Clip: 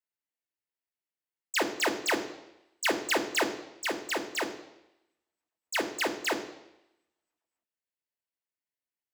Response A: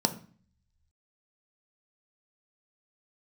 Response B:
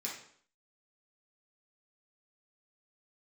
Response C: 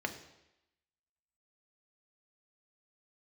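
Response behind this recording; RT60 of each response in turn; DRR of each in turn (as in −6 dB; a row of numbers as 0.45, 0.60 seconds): C; 0.45, 0.60, 0.90 seconds; 6.5, −5.0, 5.0 decibels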